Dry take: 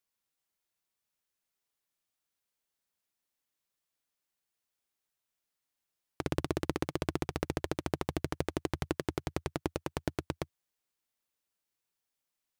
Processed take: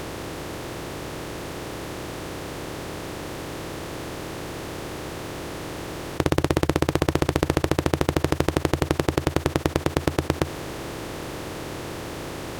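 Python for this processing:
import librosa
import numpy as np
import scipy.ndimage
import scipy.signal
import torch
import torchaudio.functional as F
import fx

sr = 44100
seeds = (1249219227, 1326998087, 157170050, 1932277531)

y = fx.bin_compress(x, sr, power=0.2)
y = F.gain(torch.from_numpy(y), 7.5).numpy()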